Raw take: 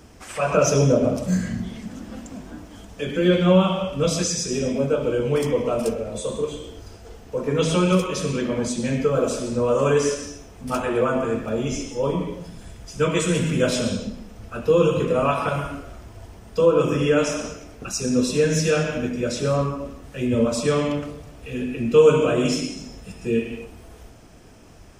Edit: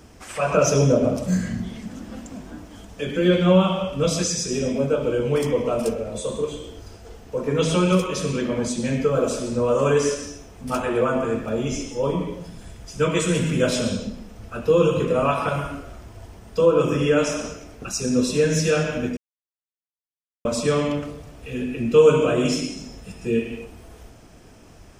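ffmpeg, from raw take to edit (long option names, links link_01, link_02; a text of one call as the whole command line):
ffmpeg -i in.wav -filter_complex "[0:a]asplit=3[link_01][link_02][link_03];[link_01]atrim=end=19.17,asetpts=PTS-STARTPTS,afade=type=out:start_time=19.166:duration=0.004:curve=hsin[link_04];[link_02]atrim=start=19.17:end=20.45,asetpts=PTS-STARTPTS,volume=0[link_05];[link_03]atrim=start=20.45,asetpts=PTS-STARTPTS,afade=type=in:duration=0.004:curve=hsin[link_06];[link_04][link_05][link_06]concat=n=3:v=0:a=1" out.wav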